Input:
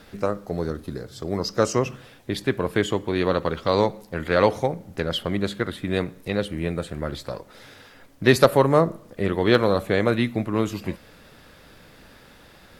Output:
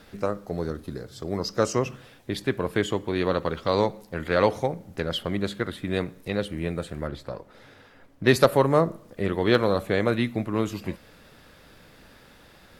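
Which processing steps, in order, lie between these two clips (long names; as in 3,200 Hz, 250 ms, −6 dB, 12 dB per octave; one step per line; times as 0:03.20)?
0:07.07–0:08.27: high-shelf EQ 3,100 Hz −10 dB
level −2.5 dB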